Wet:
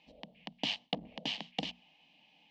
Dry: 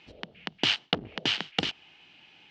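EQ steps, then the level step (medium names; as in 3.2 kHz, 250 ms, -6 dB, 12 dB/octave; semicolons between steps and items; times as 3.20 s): treble shelf 4.2 kHz -8.5 dB; hum notches 60/120/180/240 Hz; static phaser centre 380 Hz, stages 6; -4.0 dB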